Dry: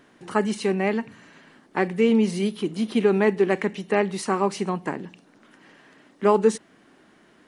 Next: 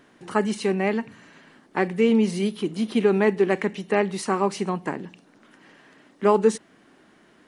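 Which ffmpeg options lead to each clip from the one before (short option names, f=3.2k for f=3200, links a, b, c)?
-af anull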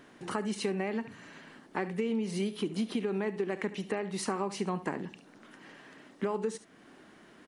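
-af "alimiter=limit=-17.5dB:level=0:latency=1:release=413,aecho=1:1:71:0.15,acompressor=threshold=-28dB:ratio=6"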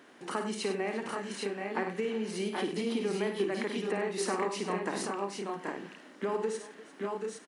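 -af "highpass=250,aecho=1:1:55|98|348|780|810:0.422|0.316|0.126|0.562|0.596"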